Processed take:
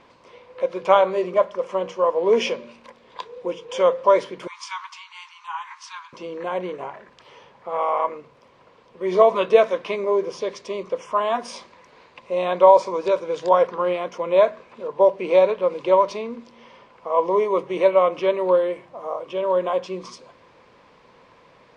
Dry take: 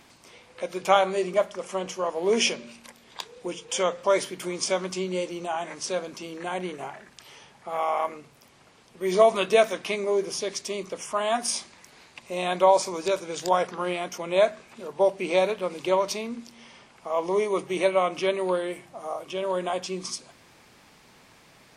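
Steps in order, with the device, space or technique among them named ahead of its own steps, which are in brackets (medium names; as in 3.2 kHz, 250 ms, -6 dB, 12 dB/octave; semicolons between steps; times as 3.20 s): 4.47–6.13 s: steep high-pass 880 Hz 96 dB/octave; inside a cardboard box (low-pass 3.7 kHz 12 dB/octave; small resonant body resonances 510/1000 Hz, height 12 dB, ringing for 25 ms); trim -1 dB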